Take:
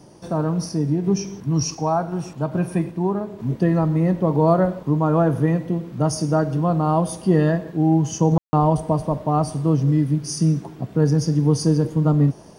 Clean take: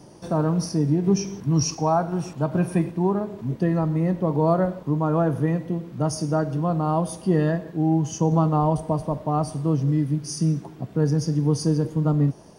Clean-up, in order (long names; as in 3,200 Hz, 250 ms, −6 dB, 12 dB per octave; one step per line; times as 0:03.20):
ambience match 0:08.38–0:08.53
level correction −3.5 dB, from 0:03.40